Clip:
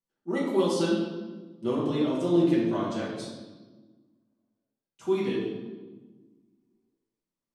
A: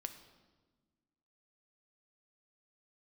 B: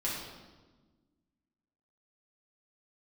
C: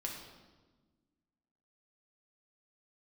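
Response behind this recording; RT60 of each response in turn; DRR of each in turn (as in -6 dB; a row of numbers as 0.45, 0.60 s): B; 1.4, 1.3, 1.3 s; 7.5, -7.0, -1.0 dB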